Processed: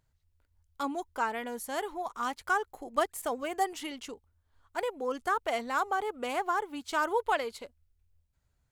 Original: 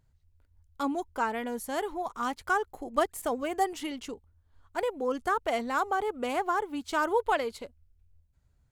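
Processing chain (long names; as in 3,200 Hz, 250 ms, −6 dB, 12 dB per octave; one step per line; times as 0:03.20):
low-shelf EQ 410 Hz −7.5 dB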